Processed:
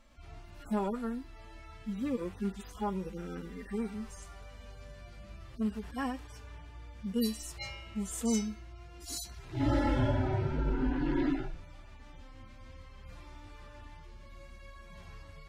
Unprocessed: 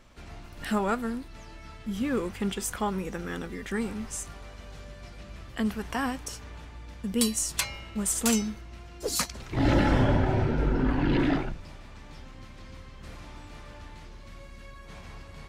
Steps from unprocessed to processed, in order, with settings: median-filter separation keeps harmonic; gain -4 dB

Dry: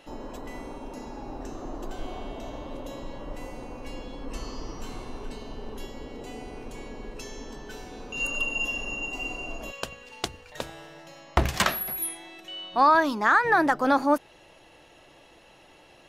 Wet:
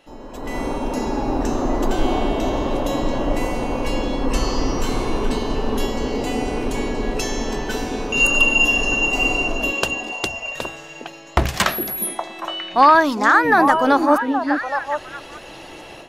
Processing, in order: AGC gain up to 17 dB; on a send: delay with a stepping band-pass 0.409 s, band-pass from 310 Hz, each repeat 1.4 oct, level -2 dB; on the sum: gain -1.5 dB

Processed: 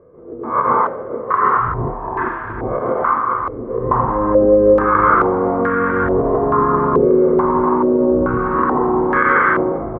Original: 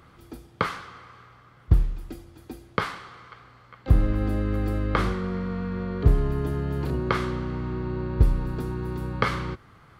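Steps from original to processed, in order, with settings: spectral swells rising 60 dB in 0.37 s; compressor, threshold -20 dBFS, peak gain reduction 10 dB; echoes that change speed 0.656 s, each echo -2 st, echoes 3, each echo -6 dB; feedback echo 0.394 s, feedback 55%, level -14 dB; reverb RT60 0.55 s, pre-delay 0.129 s, DRR -5.5 dB; maximiser +4.5 dB; stepped low-pass 2.3 Hz 470–1600 Hz; gain -9 dB

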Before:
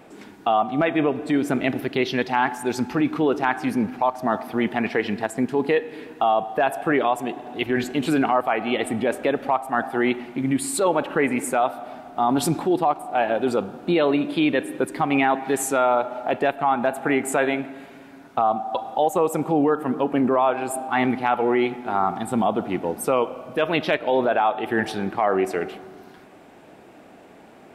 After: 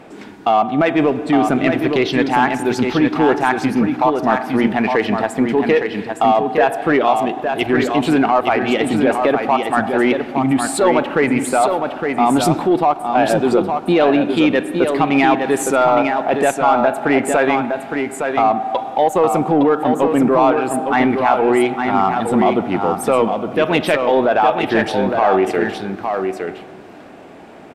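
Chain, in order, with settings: high shelf 10000 Hz -12 dB; in parallel at -4 dB: soft clip -20 dBFS, distortion -10 dB; on the sum: echo 0.862 s -5.5 dB; gain +3 dB

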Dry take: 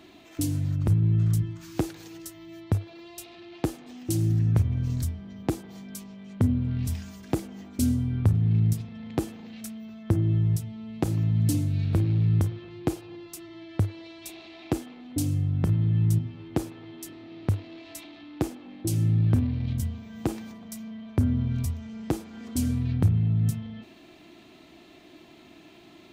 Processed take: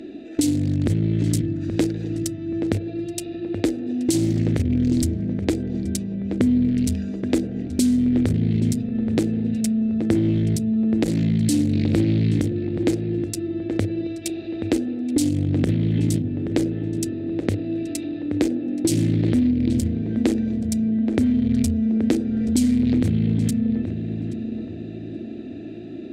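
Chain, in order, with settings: Wiener smoothing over 41 samples; graphic EQ 125/250/500/1000/2000/4000/8000 Hz -8/+11/+9/-6/+12/+11/+11 dB; limiter -14.5 dBFS, peak gain reduction 11.5 dB; compressor, threshold -25 dBFS, peak gain reduction 7.5 dB; on a send: darkening echo 0.827 s, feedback 40%, low-pass 1400 Hz, level -7.5 dB; on the sum: gain +8.5 dB

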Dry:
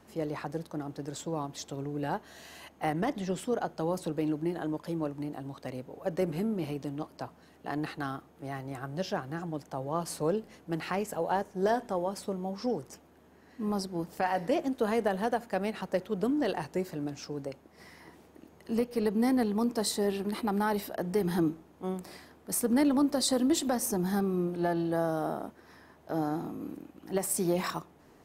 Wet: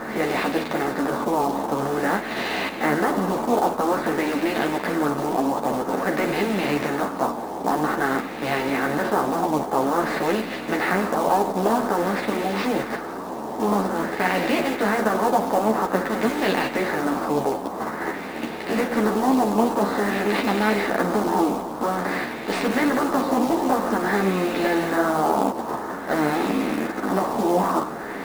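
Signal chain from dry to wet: per-bin compression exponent 0.4; high shelf 2100 Hz +6.5 dB; LFO low-pass sine 0.5 Hz 920–2600 Hz; dynamic EQ 250 Hz, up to +3 dB, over -36 dBFS, Q 7; in parallel at -1.5 dB: level quantiser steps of 14 dB; on the sum: de-hum 54.56 Hz, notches 3; on a send: delay with a stepping band-pass 0.168 s, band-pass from 2900 Hz, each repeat 0.7 oct, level -10.5 dB; on the sum: short-mantissa float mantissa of 2-bit; ensemble effect

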